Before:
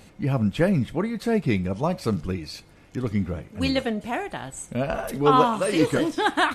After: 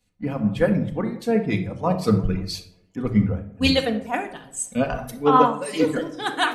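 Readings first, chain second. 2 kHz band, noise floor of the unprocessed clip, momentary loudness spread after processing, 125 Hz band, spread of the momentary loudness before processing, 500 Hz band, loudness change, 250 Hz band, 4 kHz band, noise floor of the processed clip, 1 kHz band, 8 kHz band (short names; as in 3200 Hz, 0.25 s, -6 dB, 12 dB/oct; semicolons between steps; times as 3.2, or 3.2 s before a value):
+0.5 dB, -52 dBFS, 11 LU, +1.0 dB, 12 LU, +1.5 dB, +1.5 dB, +2.0 dB, +3.5 dB, -58 dBFS, +1.5 dB, +4.5 dB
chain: vocal rider within 3 dB 0.5 s; reverb removal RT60 1.6 s; on a send: tape echo 0.178 s, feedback 87%, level -17.5 dB, low-pass 1300 Hz; on the sum: shoebox room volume 2200 m³, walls furnished, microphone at 1.9 m; three-band expander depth 100%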